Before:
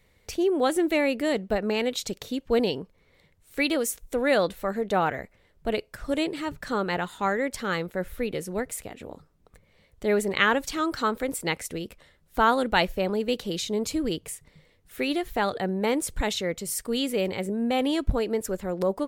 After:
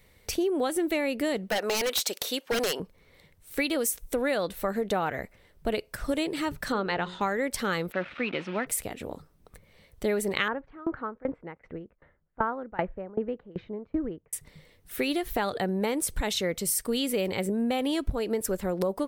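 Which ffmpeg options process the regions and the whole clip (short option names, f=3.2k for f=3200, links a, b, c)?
-filter_complex "[0:a]asettb=1/sr,asplit=3[a][b][c];[a]atrim=end=1.504[d];[b]atrim=start=1.5:end=2.8,asetpts=PTS-STARTPTS,afade=t=in:d=0.004:c=qsin,afade=t=out:st=1.296:d=0.004:c=qsin,highpass=610,acontrast=54,aeval=exprs='0.0891*(abs(mod(val(0)/0.0891+3,4)-2)-1)':c=same[e];[c]atrim=start=2.796[f];[d][e]acrossfade=d=0.004:c1=hsin:c2=qsin[g];[g][f]acrossfade=d=0.004:c1=qsin:c2=hsin,asettb=1/sr,asplit=3[h][i][j];[h]atrim=end=6.724[k];[i]atrim=start=6.72:end=7.21,asetpts=PTS-STARTPTS,afade=t=in:d=0.004:c=qsin,afade=t=out:st=0.486:d=0.004:c=qsin,lowpass=f=5.4k:w=0.5412,lowpass=f=5.4k:w=1.3066,bandreject=f=60:t=h:w=6,bandreject=f=120:t=h:w=6,bandreject=f=180:t=h:w=6,bandreject=f=240:t=h:w=6,bandreject=f=300:t=h:w=6,bandreject=f=360:t=h:w=6,bandreject=f=420:t=h:w=6,bandreject=f=480:t=h:w=6,bandreject=f=540:t=h:w=6[l];[j]atrim=start=7.206[m];[k][l]acrossfade=d=0.004:c1=hsin:c2=qsin[n];[n][m]acrossfade=d=0.004:c1=qsin:c2=hsin,asettb=1/sr,asplit=3[o][p][q];[o]atrim=end=7.924[r];[p]atrim=start=7.92:end=8.67,asetpts=PTS-STARTPTS,afade=t=in:d=0.004:c=qsin,afade=t=out:st=0.746:d=0.004:c=qsin,aeval=exprs='val(0)+0.5*0.00794*sgn(val(0))':c=same,acrusher=bits=6:mix=0:aa=0.5,highpass=230,equalizer=f=450:t=q:w=4:g=-10,equalizer=f=1.3k:t=q:w=4:g=5,equalizer=f=2.5k:t=q:w=4:g=7,lowpass=f=3.6k:w=0.5412,lowpass=f=3.6k:w=1.3066[s];[q]atrim=start=8.666[t];[r][s]acrossfade=d=0.004:c1=hsin:c2=qsin[u];[u][t]acrossfade=d=0.004:c1=qsin:c2=hsin,asettb=1/sr,asplit=3[v][w][x];[v]atrim=end=10.484[y];[w]atrim=start=10.48:end=14.33,asetpts=PTS-STARTPTS,afade=t=in:d=0.004:c=qsin,afade=t=out:st=3.846:d=0.004:c=qsin,lowpass=f=1.7k:w=0.5412,lowpass=f=1.7k:w=1.3066,aeval=exprs='val(0)*pow(10,-24*if(lt(mod(2.6*n/s,1),2*abs(2.6)/1000),1-mod(2.6*n/s,1)/(2*abs(2.6)/1000),(mod(2.6*n/s,1)-2*abs(2.6)/1000)/(1-2*abs(2.6)/1000))/20)':c=same[z];[x]atrim=start=14.326[aa];[y][z]acrossfade=d=0.004:c1=hsin:c2=qsin[ab];[ab][aa]acrossfade=d=0.004:c1=qsin:c2=hsin,highshelf=f=8.6k:g=7,bandreject=f=7k:w=14,acompressor=threshold=-27dB:ratio=6,volume=3dB"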